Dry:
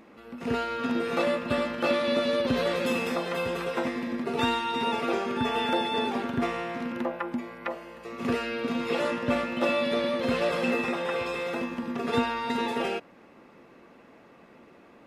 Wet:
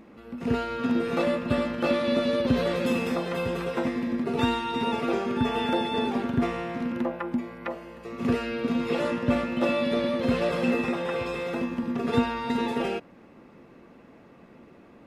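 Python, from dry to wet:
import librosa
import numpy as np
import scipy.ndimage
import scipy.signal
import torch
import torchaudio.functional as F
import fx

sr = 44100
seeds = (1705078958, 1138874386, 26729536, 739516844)

y = fx.low_shelf(x, sr, hz=300.0, db=10.0)
y = y * 10.0 ** (-2.0 / 20.0)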